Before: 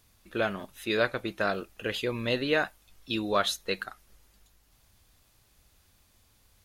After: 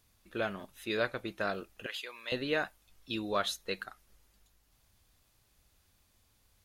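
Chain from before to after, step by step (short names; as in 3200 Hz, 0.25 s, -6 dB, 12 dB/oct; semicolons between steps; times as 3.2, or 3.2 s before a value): 1.86–2.32 HPF 1000 Hz 12 dB/oct; gain -5.5 dB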